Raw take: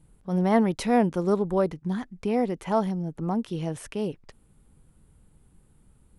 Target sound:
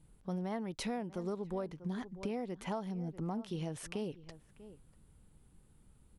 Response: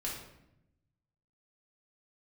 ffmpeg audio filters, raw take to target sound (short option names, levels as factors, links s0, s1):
-filter_complex "[0:a]equalizer=f=4200:t=o:w=1.5:g=3.5,asplit=2[s0][s1];[s1]adelay=641.4,volume=0.1,highshelf=f=4000:g=-14.4[s2];[s0][s2]amix=inputs=2:normalize=0,acompressor=threshold=0.0355:ratio=10,volume=0.562"